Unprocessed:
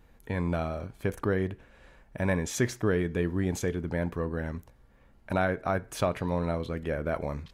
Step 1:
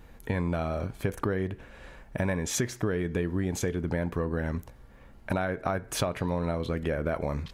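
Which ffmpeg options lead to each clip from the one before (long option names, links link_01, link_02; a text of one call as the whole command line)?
ffmpeg -i in.wav -af "acompressor=threshold=-33dB:ratio=6,volume=7.5dB" out.wav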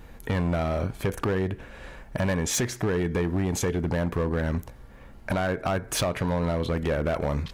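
ffmpeg -i in.wav -af "volume=25.5dB,asoftclip=hard,volume=-25.5dB,volume=5dB" out.wav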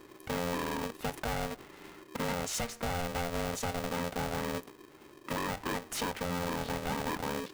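ffmpeg -i in.wav -af "aeval=exprs='val(0)*sgn(sin(2*PI*350*n/s))':channel_layout=same,volume=-8.5dB" out.wav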